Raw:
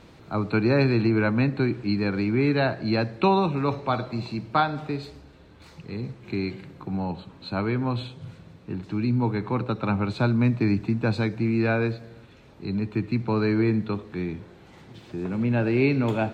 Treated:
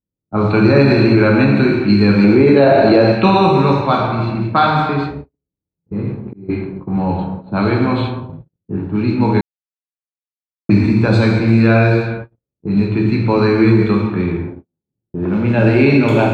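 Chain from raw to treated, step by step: gated-style reverb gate 490 ms falling, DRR -1.5 dB; 9.41–10.69 s: mute; gate -34 dBFS, range -46 dB; 6.02–6.49 s: slow attack 607 ms; level-controlled noise filter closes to 370 Hz, open at -16.5 dBFS; 2.24–3.12 s: peaking EQ 500 Hz +10.5 dB 1.6 oct; loudness maximiser +9 dB; trim -1 dB

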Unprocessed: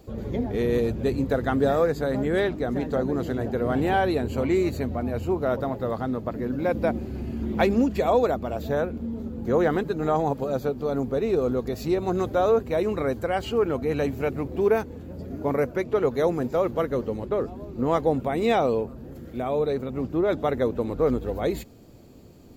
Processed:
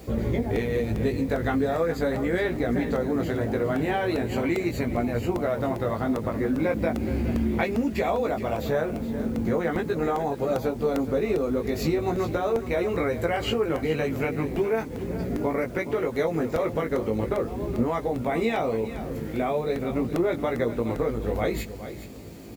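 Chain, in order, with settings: high-pass 40 Hz 12 dB/octave; peaking EQ 2.1 kHz +7.5 dB 0.47 oct; in parallel at -3 dB: peak limiter -17 dBFS, peak gain reduction 10 dB; on the sum: compression 10:1, threshold -25 dBFS, peak gain reduction 12.5 dB; chorus 0.39 Hz, delay 17 ms, depth 2.1 ms; bit crusher 10-bit; on a send: delay 419 ms -12.5 dB; on the sum: crackling interface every 0.40 s, samples 64, repeat, from 0.56 s; trim +6 dB

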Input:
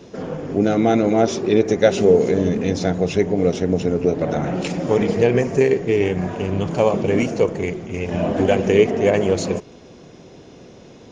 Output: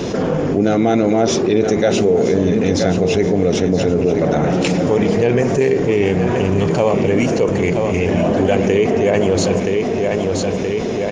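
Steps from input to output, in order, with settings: on a send: feedback delay 974 ms, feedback 41%, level -11 dB; on the sum: level flattener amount 70%; trim -3 dB

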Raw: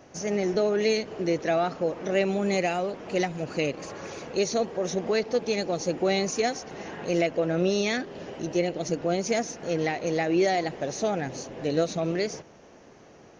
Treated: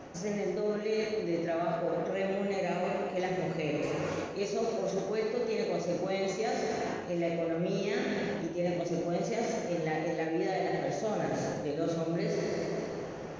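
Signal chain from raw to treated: plate-style reverb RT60 2 s, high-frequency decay 0.85×, DRR -1.5 dB; reverse; compression 6:1, threshold -36 dBFS, peak gain reduction 20 dB; reverse; treble shelf 4 kHz -9 dB; trim +6 dB

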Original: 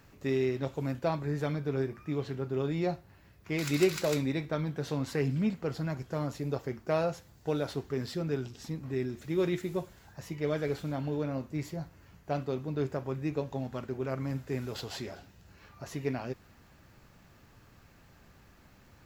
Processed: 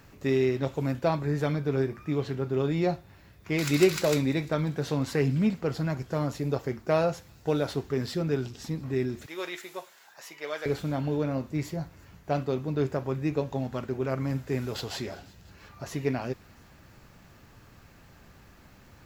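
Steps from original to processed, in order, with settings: 9.26–10.66 s: high-pass 800 Hz 12 dB/octave; feedback echo behind a high-pass 347 ms, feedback 61%, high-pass 3.2 kHz, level -22 dB; trim +4.5 dB

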